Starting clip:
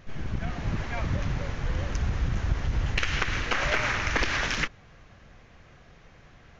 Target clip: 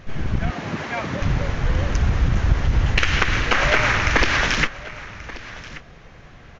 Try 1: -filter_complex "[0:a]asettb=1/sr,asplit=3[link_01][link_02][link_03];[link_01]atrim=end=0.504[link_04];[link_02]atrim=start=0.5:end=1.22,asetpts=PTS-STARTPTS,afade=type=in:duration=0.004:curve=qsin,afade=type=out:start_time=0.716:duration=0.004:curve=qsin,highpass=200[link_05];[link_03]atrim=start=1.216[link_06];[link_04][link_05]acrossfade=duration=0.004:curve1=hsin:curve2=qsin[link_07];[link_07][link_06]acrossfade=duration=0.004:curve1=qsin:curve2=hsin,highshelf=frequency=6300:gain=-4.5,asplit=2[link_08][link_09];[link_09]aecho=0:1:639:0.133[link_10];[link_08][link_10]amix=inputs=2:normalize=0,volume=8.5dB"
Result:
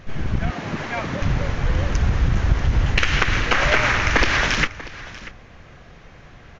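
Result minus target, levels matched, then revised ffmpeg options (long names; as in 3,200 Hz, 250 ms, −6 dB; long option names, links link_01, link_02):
echo 493 ms early
-filter_complex "[0:a]asettb=1/sr,asplit=3[link_01][link_02][link_03];[link_01]atrim=end=0.504[link_04];[link_02]atrim=start=0.5:end=1.22,asetpts=PTS-STARTPTS,afade=type=in:duration=0.004:curve=qsin,afade=type=out:start_time=0.716:duration=0.004:curve=qsin,highpass=200[link_05];[link_03]atrim=start=1.216[link_06];[link_04][link_05]acrossfade=duration=0.004:curve1=hsin:curve2=qsin[link_07];[link_07][link_06]acrossfade=duration=0.004:curve1=qsin:curve2=hsin,highshelf=frequency=6300:gain=-4.5,asplit=2[link_08][link_09];[link_09]aecho=0:1:1132:0.133[link_10];[link_08][link_10]amix=inputs=2:normalize=0,volume=8.5dB"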